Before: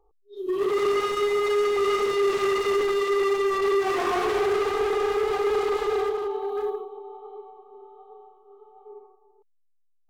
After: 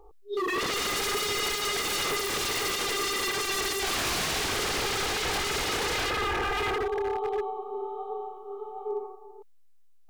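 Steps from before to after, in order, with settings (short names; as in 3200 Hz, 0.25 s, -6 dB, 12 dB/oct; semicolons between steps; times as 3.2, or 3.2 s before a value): in parallel at -2.5 dB: compressor, threshold -35 dBFS, peak gain reduction 13 dB; on the sum: wavefolder -31 dBFS; gain +7.5 dB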